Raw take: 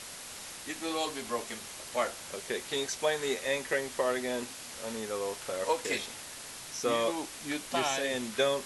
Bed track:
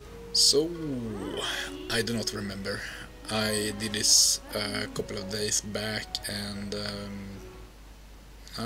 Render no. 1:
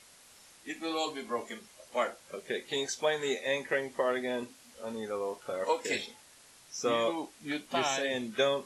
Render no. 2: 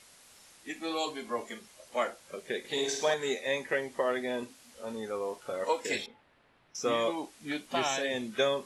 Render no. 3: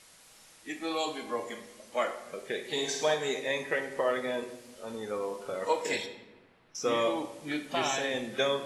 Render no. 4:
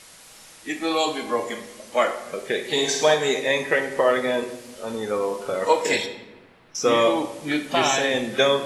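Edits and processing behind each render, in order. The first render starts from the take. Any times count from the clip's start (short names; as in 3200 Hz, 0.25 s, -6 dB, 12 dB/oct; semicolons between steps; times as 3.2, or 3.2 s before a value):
noise print and reduce 13 dB
2.59–3.14 flutter echo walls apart 9.2 m, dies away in 0.79 s; 6.06–6.75 air absorption 490 m
shoebox room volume 600 m³, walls mixed, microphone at 0.61 m
gain +9.5 dB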